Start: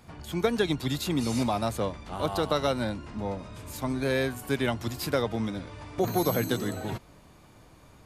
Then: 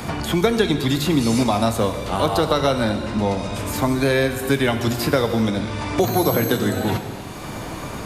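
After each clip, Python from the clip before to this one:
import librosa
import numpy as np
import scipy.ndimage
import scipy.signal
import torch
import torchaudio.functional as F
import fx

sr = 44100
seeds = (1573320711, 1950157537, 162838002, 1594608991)

y = fx.rev_gated(x, sr, seeds[0], gate_ms=400, shape='falling', drr_db=7.5)
y = fx.band_squash(y, sr, depth_pct=70)
y = y * 10.0 ** (8.0 / 20.0)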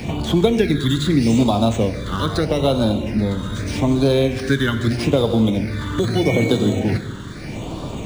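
y = fx.phaser_stages(x, sr, stages=8, low_hz=710.0, high_hz=1900.0, hz=0.8, feedback_pct=25)
y = np.interp(np.arange(len(y)), np.arange(len(y))[::3], y[::3])
y = y * 10.0 ** (3.0 / 20.0)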